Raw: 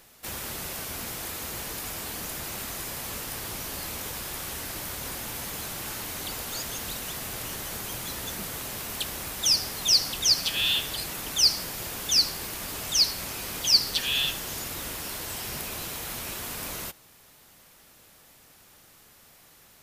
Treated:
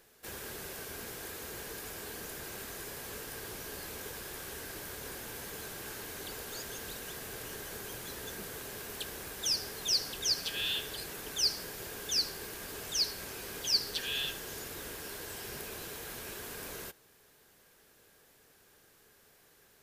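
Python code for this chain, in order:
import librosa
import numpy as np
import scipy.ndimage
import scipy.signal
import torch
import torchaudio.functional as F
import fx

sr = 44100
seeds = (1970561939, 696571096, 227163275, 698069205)

y = fx.small_body(x, sr, hz=(420.0, 1600.0), ring_ms=25, db=10)
y = F.gain(torch.from_numpy(y), -9.0).numpy()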